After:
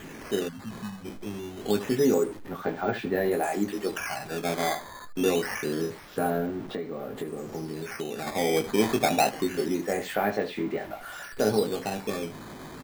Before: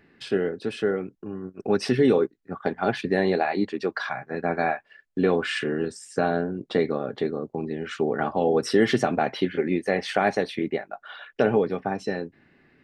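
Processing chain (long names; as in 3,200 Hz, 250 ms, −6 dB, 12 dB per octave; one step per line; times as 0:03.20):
converter with a step at zero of −31.5 dBFS
high-shelf EQ 4,000 Hz −11.5 dB
ambience of single reflections 19 ms −5 dB, 76 ms −12.5 dB
0:00.48–0:01.05: time-frequency box erased 260–1,500 Hz
0:06.62–0:08.27: downward compressor 6 to 1, threshold −25 dBFS, peak gain reduction 10 dB
0:08.80–0:09.29: parametric band 800 Hz +7 dB 0.67 octaves
sample-and-hold swept by an LFO 9×, swing 160% 0.26 Hz
level −5.5 dB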